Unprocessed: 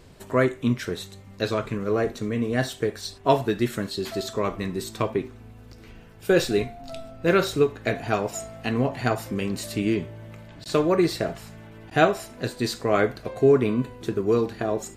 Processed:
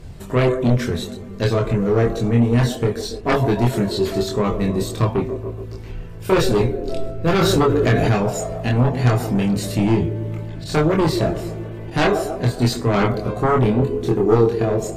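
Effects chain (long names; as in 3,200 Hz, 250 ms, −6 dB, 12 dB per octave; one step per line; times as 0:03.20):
low-shelf EQ 270 Hz +10 dB
delay with a band-pass on its return 141 ms, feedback 61%, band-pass 530 Hz, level −11 dB
sine wavefolder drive 7 dB, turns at −5.5 dBFS
multi-voice chorus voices 4, 0.22 Hz, delay 25 ms, depth 1.3 ms
0:07.41–0:08.12: envelope flattener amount 70%
level −3.5 dB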